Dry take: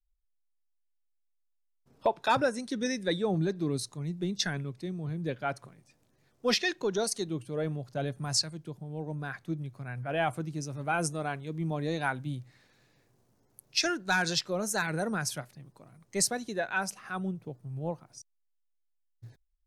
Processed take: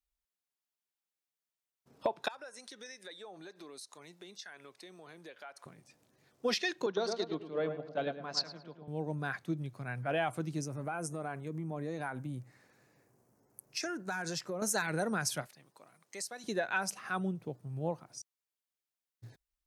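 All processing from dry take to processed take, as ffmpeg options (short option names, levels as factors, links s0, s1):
-filter_complex "[0:a]asettb=1/sr,asplit=3[s0][s1][s2];[s0]atrim=end=2.284[s3];[s1]atrim=start=2.28:end=5.66,asetpts=PTS-STARTPTS,afade=t=in:d=0.004:c=qsin,afade=t=out:st=3.376:d=0.004:c=qsin,highpass=650,acompressor=threshold=0.00398:ratio=5:attack=3.2:release=140:knee=1:detection=peak[s4];[s2]atrim=start=5.656[s5];[s3][s4]acrossfade=d=0.004:c1=hsin:c2=qsin[s6];[s6][s5]acrossfade=d=0.004:c1=qsin:c2=hsin,asettb=1/sr,asplit=3[s7][s8][s9];[s7]atrim=end=6.864[s10];[s8]atrim=start=6.86:end=8.88,asetpts=PTS-STARTPTS,afade=t=in:d=0.004:c=qsin,afade=t=out:st=2.016:d=0.004:c=qsin,highpass=f=190:w=0.5412,highpass=f=190:w=1.3066,equalizer=f=220:t=q:w=4:g=-3,equalizer=f=350:t=q:w=4:g=-5,equalizer=f=1100:t=q:w=4:g=3,lowpass=f=4600:w=0.5412,lowpass=f=4600:w=1.3066,asplit=2[s11][s12];[s12]adelay=107,lowpass=f=1900:p=1,volume=0.501,asplit=2[s13][s14];[s14]adelay=107,lowpass=f=1900:p=1,volume=0.55,asplit=2[s15][s16];[s16]adelay=107,lowpass=f=1900:p=1,volume=0.55,asplit=2[s17][s18];[s18]adelay=107,lowpass=f=1900:p=1,volume=0.55,asplit=2[s19][s20];[s20]adelay=107,lowpass=f=1900:p=1,volume=0.55,asplit=2[s21][s22];[s22]adelay=107,lowpass=f=1900:p=1,volume=0.55,asplit=2[s23][s24];[s24]adelay=107,lowpass=f=1900:p=1,volume=0.55[s25];[s11][s13][s15][s17][s19][s21][s23][s25]amix=inputs=8:normalize=0,atrim=end_sample=89082,agate=range=0.501:threshold=0.0158:ratio=16:release=100:detection=peak[s26];[s9]atrim=start=8.876[s27];[s10][s26]acrossfade=d=0.004:c1=hsin:c2=qsin[s28];[s28][s27]acrossfade=d=0.004:c1=qsin:c2=hsin,asettb=1/sr,asplit=3[s29][s30][s31];[s29]atrim=end=10.614[s32];[s30]atrim=start=10.61:end=14.62,asetpts=PTS-STARTPTS,afade=t=in:d=0.004:c=qsin,afade=t=out:st=4.006:d=0.004:c=qsin,equalizer=f=3600:w=1.3:g=-12,acompressor=threshold=0.02:ratio=10:attack=3.2:release=140:knee=1:detection=peak[s33];[s31]atrim=start=14.616[s34];[s32][s33]acrossfade=d=0.004:c1=hsin:c2=qsin[s35];[s35][s34]acrossfade=d=0.004:c1=qsin:c2=hsin,asettb=1/sr,asplit=3[s36][s37][s38];[s36]atrim=end=15.464[s39];[s37]atrim=start=15.46:end=16.44,asetpts=PTS-STARTPTS,afade=t=in:d=0.004:c=qsin,afade=t=out:st=0.976:d=0.004:c=qsin,highpass=f=800:p=1,acompressor=threshold=0.00501:ratio=2.5:attack=3.2:release=140:knee=1:detection=peak[s40];[s38]atrim=start=16.436[s41];[s39][s40]acrossfade=d=0.004:c1=hsin:c2=qsin[s42];[s42][s41]acrossfade=d=0.004:c1=qsin:c2=hsin,highpass=f=170:p=1,acompressor=threshold=0.0316:ratio=10,volume=1.26"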